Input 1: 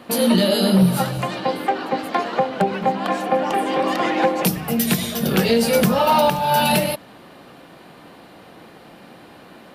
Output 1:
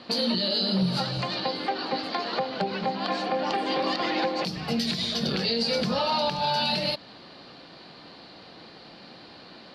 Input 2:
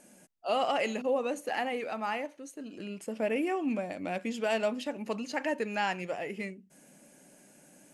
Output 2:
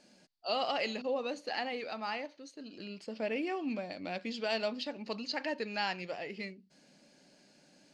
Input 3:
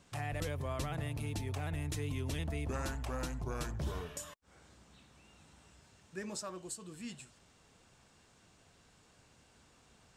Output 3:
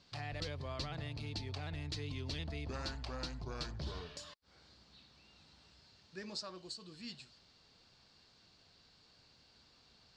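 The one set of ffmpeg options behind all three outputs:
ffmpeg -i in.wav -af "lowpass=frequency=4500:width_type=q:width=6.3,alimiter=limit=-11.5dB:level=0:latency=1:release=158,volume=-5dB" out.wav

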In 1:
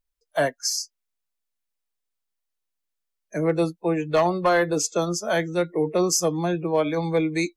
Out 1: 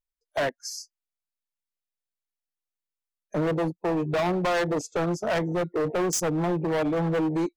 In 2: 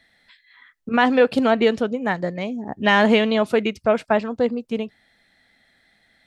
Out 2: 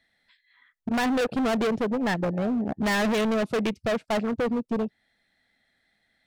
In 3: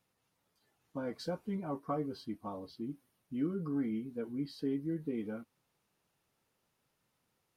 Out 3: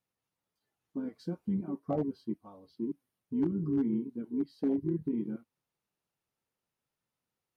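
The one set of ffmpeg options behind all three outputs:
ffmpeg -i in.wav -filter_complex "[0:a]afwtdn=0.0447,asplit=2[link_01][link_02];[link_02]acompressor=threshold=-32dB:ratio=6,volume=1dB[link_03];[link_01][link_03]amix=inputs=2:normalize=0,volume=22.5dB,asoftclip=hard,volume=-22.5dB" out.wav

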